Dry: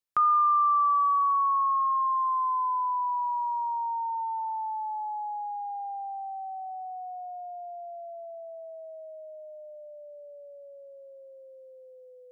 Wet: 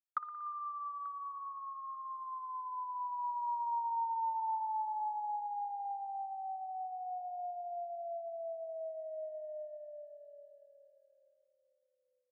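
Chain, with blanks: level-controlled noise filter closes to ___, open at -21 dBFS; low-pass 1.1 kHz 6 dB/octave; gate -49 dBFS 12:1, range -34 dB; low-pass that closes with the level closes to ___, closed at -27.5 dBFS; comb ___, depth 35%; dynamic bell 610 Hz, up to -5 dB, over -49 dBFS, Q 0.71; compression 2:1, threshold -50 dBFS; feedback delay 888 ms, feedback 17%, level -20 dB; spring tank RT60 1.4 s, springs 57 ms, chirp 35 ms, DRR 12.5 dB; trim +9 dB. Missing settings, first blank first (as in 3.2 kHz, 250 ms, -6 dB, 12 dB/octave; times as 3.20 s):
390 Hz, 320 Hz, 3.2 ms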